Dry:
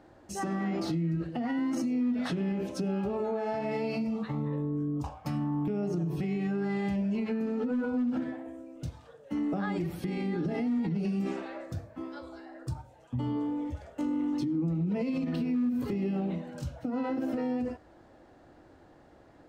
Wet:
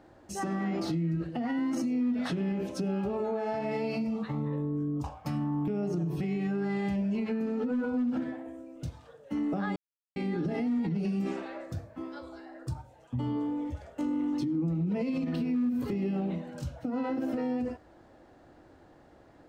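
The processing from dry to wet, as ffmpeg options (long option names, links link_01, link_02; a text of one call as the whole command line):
ffmpeg -i in.wav -filter_complex "[0:a]asplit=3[link_01][link_02][link_03];[link_01]atrim=end=9.76,asetpts=PTS-STARTPTS,afade=type=out:start_time=9.756:duration=0.004:curve=hsin[link_04];[link_02]atrim=start=9.76:end=10.16,asetpts=PTS-STARTPTS,volume=0[link_05];[link_03]atrim=start=10.16,asetpts=PTS-STARTPTS,afade=type=in:duration=0.004:curve=hsin[link_06];[link_04][link_05][link_06]concat=n=3:v=0:a=1" out.wav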